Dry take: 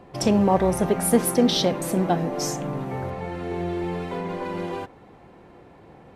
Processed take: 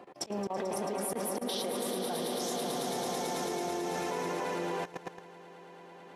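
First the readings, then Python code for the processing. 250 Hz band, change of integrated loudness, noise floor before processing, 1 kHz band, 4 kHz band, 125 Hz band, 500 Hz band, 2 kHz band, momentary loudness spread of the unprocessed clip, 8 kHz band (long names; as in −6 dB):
−14.0 dB, −10.5 dB, −50 dBFS, −7.5 dB, −8.0 dB, −17.5 dB, −9.5 dB, −5.5 dB, 12 LU, −8.0 dB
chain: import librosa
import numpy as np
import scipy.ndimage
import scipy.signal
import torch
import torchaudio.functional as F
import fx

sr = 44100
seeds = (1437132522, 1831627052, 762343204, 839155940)

y = scipy.signal.sosfilt(scipy.signal.butter(2, 310.0, 'highpass', fs=sr, output='sos'), x)
y = fx.echo_swell(y, sr, ms=110, loudest=5, wet_db=-10)
y = fx.auto_swell(y, sr, attack_ms=163.0)
y = fx.level_steps(y, sr, step_db=17)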